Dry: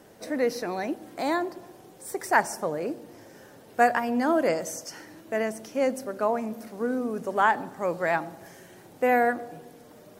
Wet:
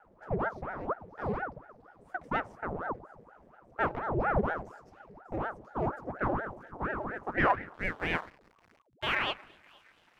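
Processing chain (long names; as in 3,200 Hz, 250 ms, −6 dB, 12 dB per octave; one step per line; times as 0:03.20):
delay with a high-pass on its return 595 ms, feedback 48%, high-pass 3,900 Hz, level −14 dB
half-wave rectification
band-pass filter sweep 300 Hz → 2,100 Hz, 0:05.43–0:09.31
0:07.74–0:09.15: slack as between gear wheels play −49.5 dBFS
ring modulator whose carrier an LFO sweeps 620 Hz, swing 85%, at 4.2 Hz
level +7 dB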